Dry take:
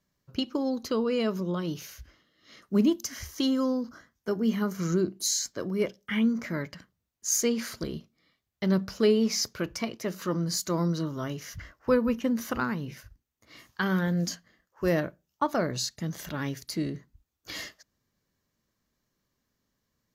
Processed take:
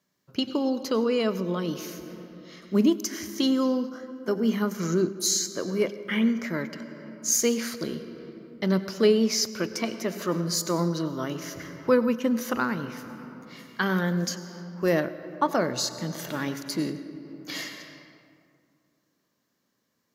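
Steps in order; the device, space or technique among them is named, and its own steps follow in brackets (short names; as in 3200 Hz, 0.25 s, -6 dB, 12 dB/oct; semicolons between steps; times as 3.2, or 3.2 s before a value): HPF 180 Hz 12 dB/oct; compressed reverb return (on a send at -4 dB: reverb RT60 2.2 s, pre-delay 87 ms + compressor 5:1, threshold -35 dBFS, peak gain reduction 15.5 dB); on the sum: gain +3 dB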